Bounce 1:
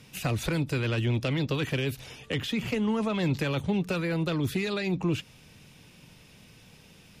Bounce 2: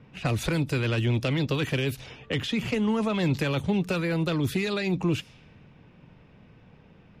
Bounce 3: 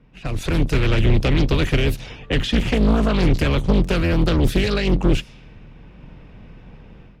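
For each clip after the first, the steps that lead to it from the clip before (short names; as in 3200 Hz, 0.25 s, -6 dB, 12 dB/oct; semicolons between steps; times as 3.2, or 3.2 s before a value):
low-pass opened by the level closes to 1300 Hz, open at -26 dBFS; gain +2 dB
octaver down 2 oct, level +3 dB; AGC gain up to 12 dB; Doppler distortion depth 0.69 ms; gain -4 dB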